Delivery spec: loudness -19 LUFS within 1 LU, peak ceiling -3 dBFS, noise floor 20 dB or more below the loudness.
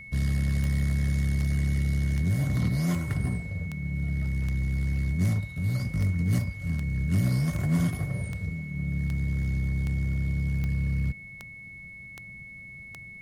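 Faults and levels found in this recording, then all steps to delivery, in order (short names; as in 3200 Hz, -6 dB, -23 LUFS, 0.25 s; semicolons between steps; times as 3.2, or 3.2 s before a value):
clicks 17; steady tone 2200 Hz; tone level -42 dBFS; loudness -28.0 LUFS; peak -15.0 dBFS; loudness target -19.0 LUFS
-> de-click; notch 2200 Hz, Q 30; gain +9 dB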